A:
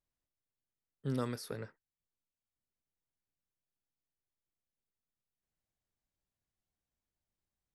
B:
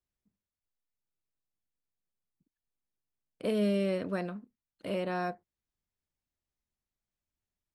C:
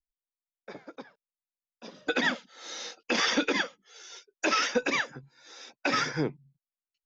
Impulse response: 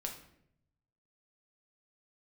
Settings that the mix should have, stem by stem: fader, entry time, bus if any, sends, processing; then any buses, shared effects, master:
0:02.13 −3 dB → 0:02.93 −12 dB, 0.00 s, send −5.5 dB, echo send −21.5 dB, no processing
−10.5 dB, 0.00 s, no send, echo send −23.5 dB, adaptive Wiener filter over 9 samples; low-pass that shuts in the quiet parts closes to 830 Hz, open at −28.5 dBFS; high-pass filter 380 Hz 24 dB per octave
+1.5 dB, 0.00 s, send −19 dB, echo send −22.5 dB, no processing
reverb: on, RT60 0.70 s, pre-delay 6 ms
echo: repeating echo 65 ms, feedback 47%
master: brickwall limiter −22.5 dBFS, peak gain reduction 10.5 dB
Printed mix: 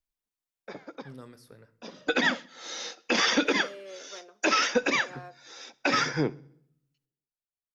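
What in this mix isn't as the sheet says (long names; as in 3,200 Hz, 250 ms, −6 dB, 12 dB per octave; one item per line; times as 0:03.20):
stem A −3.0 dB → −13.5 dB
master: missing brickwall limiter −22.5 dBFS, peak gain reduction 10.5 dB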